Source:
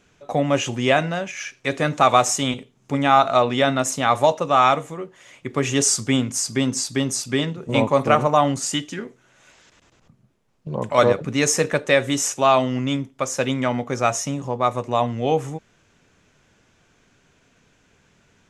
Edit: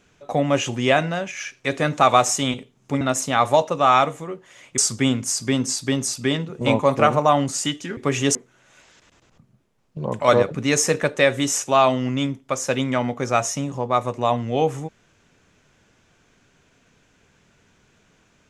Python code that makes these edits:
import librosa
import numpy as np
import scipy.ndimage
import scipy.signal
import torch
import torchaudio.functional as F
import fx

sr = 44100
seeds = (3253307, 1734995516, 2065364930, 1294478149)

y = fx.edit(x, sr, fx.cut(start_s=3.01, length_s=0.7),
    fx.move(start_s=5.48, length_s=0.38, to_s=9.05), tone=tone)